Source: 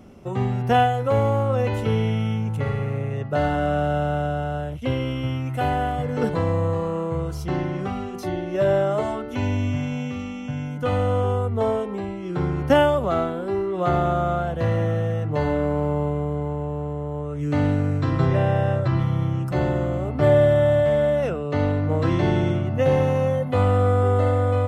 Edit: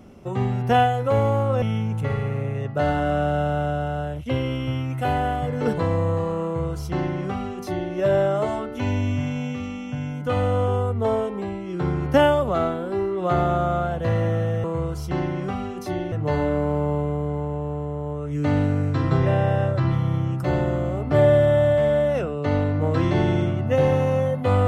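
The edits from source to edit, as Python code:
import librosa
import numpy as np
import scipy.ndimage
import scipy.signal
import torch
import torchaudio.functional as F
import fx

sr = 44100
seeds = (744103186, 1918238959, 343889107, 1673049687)

y = fx.edit(x, sr, fx.cut(start_s=1.62, length_s=0.56),
    fx.duplicate(start_s=7.01, length_s=1.48, to_s=15.2), tone=tone)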